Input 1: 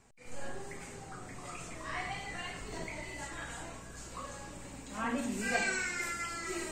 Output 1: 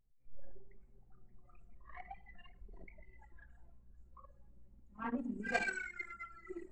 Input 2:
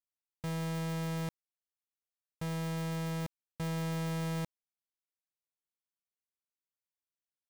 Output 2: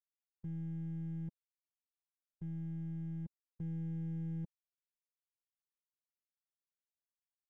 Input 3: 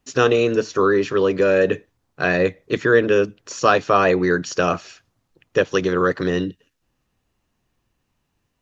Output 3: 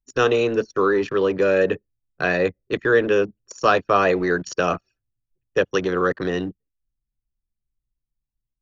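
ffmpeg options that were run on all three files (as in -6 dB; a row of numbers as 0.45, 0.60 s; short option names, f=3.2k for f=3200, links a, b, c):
-filter_complex "[0:a]anlmdn=39.8,acrossover=split=270|1200[a][b][c];[a]asoftclip=type=hard:threshold=-29dB[d];[d][b][c]amix=inputs=3:normalize=0,volume=-1.5dB"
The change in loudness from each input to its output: -3.0, -5.5, -2.0 LU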